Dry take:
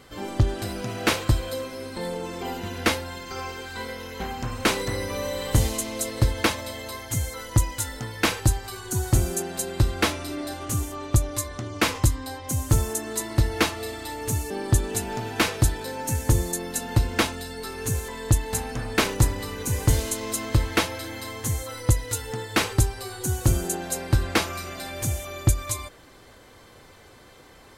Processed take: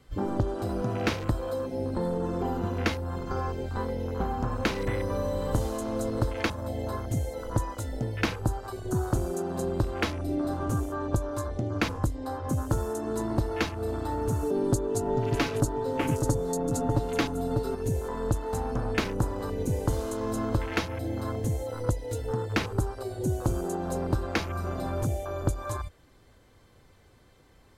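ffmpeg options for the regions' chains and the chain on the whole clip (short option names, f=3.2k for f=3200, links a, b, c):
-filter_complex "[0:a]asettb=1/sr,asplit=3[a][b][c];[a]atrim=end=14.424[d];[b]atrim=start=14.42:end=17.75,asetpts=PTS-STARTPTS,afade=t=in:d=0.004:c=qsin,afade=t=out:st=3.326:d=0.004:c=qsin,equalizer=f=370:t=o:w=2.2:g=5,aecho=1:1:7.1:0.85,atrim=end_sample=146853,aecho=1:1:597:0.376,atrim=end_sample=146853[e];[c]atrim=start=17.746[f];[d][e]acrossfade=d=0.004:c1=hsin:c2=qsin[g];[g][f]acrossfade=d=0.004:c1=qsin:c2=hsin,afwtdn=0.0224,lowshelf=f=230:g=10.5,acrossover=split=310|2700|7300[h][i][j][k];[h]acompressor=threshold=-35dB:ratio=4[l];[i]acompressor=threshold=-34dB:ratio=4[m];[j]acompressor=threshold=-46dB:ratio=4[n];[k]acompressor=threshold=-50dB:ratio=4[o];[l][m][n][o]amix=inputs=4:normalize=0,volume=4dB"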